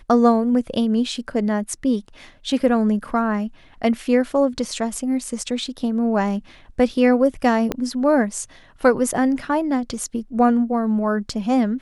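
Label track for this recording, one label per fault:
7.720000	7.720000	pop -9 dBFS

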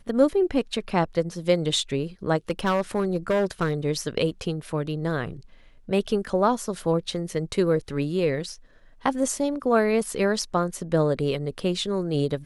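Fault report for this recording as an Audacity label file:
2.500000	3.730000	clipped -18 dBFS

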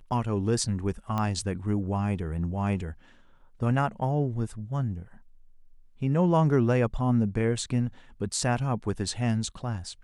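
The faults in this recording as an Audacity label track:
1.180000	1.180000	pop -17 dBFS

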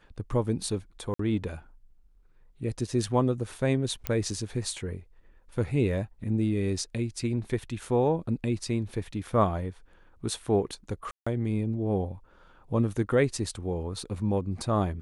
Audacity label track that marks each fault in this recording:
1.140000	1.190000	gap 54 ms
4.070000	4.070000	pop -12 dBFS
11.110000	11.270000	gap 0.155 s

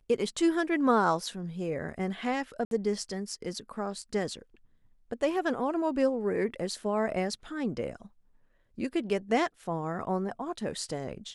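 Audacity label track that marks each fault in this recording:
2.650000	2.710000	gap 62 ms

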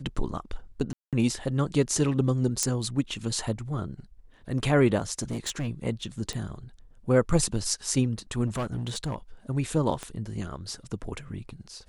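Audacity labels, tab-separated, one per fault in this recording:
0.930000	1.130000	gap 0.197 s
2.630000	2.630000	pop -10 dBFS
5.220000	5.680000	clipped -26.5 dBFS
6.330000	6.330000	pop
8.460000	9.160000	clipped -25.5 dBFS
10.030000	10.030000	pop -20 dBFS

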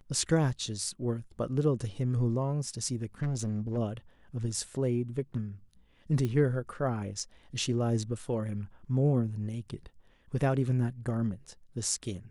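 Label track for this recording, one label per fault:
3.220000	3.780000	clipped -27.5 dBFS
6.250000	6.250000	pop -20 dBFS

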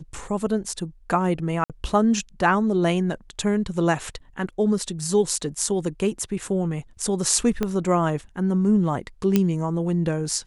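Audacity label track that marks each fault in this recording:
1.640000	1.700000	gap 57 ms
7.630000	7.630000	pop -11 dBFS
9.360000	9.360000	pop -6 dBFS

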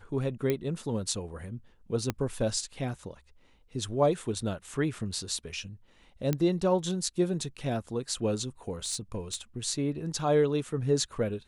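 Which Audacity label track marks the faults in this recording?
0.500000	0.500000	pop -15 dBFS
2.100000	2.100000	pop -14 dBFS
6.330000	6.330000	pop -14 dBFS
8.840000	9.360000	clipped -26 dBFS

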